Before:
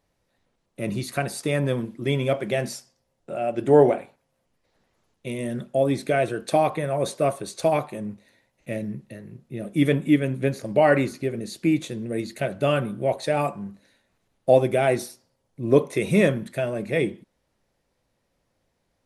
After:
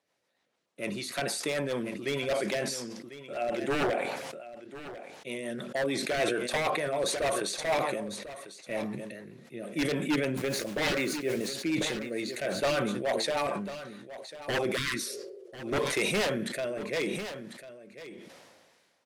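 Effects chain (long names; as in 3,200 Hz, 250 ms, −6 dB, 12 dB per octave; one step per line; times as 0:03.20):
meter weighting curve A
0:10.37–0:11.54: bit-depth reduction 8 bits, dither none
wave folding −20.5 dBFS
rotating-speaker cabinet horn 6.7 Hz, later 0.7 Hz, at 0:14.93
0:14.79–0:15.54: healed spectral selection 350–980 Hz after
single-tap delay 1,046 ms −14.5 dB
level that may fall only so fast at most 32 dB per second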